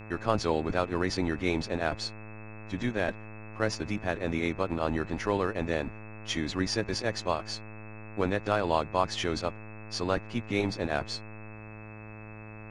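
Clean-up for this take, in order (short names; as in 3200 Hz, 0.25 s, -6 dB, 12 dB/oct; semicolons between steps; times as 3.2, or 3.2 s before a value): de-hum 107.9 Hz, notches 24; notch 2600 Hz, Q 30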